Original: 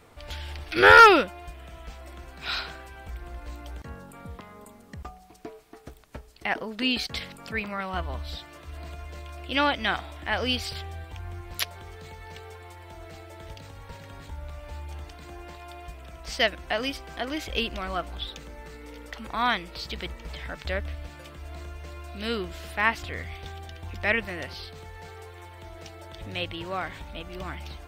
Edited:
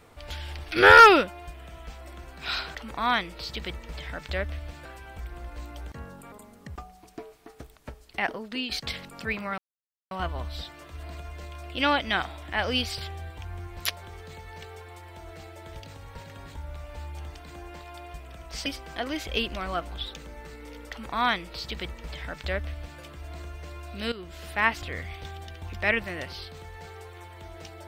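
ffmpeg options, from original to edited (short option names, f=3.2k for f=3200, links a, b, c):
-filter_complex "[0:a]asplit=8[a][b][c][d][e][f][g][h];[a]atrim=end=2.752[i];[b]atrim=start=19.108:end=21.212[j];[c]atrim=start=2.748:end=4.222[k];[d]atrim=start=4.588:end=6.98,asetpts=PTS-STARTPTS,afade=t=out:st=1.912:d=0.48:silence=0.334965[l];[e]atrim=start=6.98:end=7.85,asetpts=PTS-STARTPTS,afade=t=in:d=0.004:c=hsin:silence=0.334965,afade=t=out:st=0.866:d=0.004:c=hsin,apad=pad_dur=0.53[m];[f]atrim=start=7.85:end=16.402,asetpts=PTS-STARTPTS,afade=t=in:d=0.004:c=hsin[n];[g]atrim=start=16.868:end=22.33,asetpts=PTS-STARTPTS,afade=t=out:st=5.458:d=0.004:c=hsin:silence=0.199526[o];[h]atrim=start=22.33,asetpts=PTS-STARTPTS,afade=t=in:d=0.38:silence=0.199526[p];[i][j]acrossfade=d=0.004:c1=hsin:c2=hsin[q];[q][k]acrossfade=d=0.004:c1=hsin:c2=hsin[r];[l][m][n]concat=n=3:v=0:a=1[s];[r][s]acrossfade=d=0.004:c1=hsin:c2=hsin[t];[o][p]concat=n=2:v=0:a=1[u];[t][u]acrossfade=d=0.004:c1=hsin:c2=hsin"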